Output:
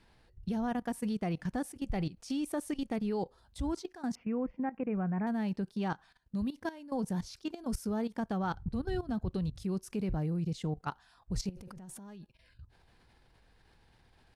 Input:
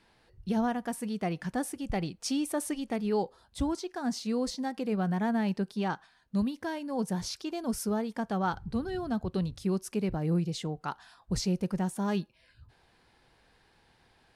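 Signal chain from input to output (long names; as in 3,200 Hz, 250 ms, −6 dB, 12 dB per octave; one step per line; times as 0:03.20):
0:04.15–0:05.27: elliptic low-pass filter 2,500 Hz, stop band 40 dB
0:11.49–0:12.21: compressor whose output falls as the input rises −38 dBFS, ratio −1
low-shelf EQ 120 Hz +12 dB
output level in coarse steps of 16 dB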